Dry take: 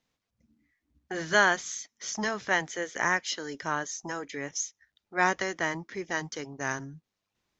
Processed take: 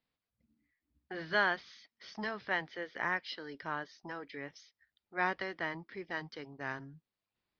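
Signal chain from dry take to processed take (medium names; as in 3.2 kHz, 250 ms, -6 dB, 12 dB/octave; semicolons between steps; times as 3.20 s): elliptic low-pass 4.8 kHz, stop band 40 dB; trim -7 dB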